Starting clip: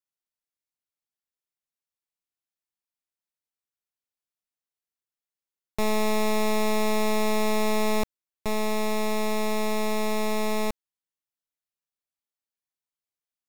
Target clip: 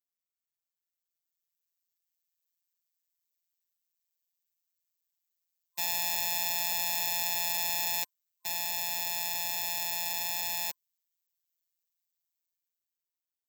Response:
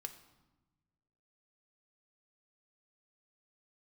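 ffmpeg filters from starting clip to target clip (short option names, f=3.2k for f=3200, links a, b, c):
-af "superequalizer=10b=0.398:16b=0.355,afftfilt=real='hypot(re,im)*cos(PI*b)':imag='0':win_size=1024:overlap=0.75,acrusher=bits=9:mode=log:mix=0:aa=0.000001,aderivative,dynaudnorm=f=300:g=9:m=10dB"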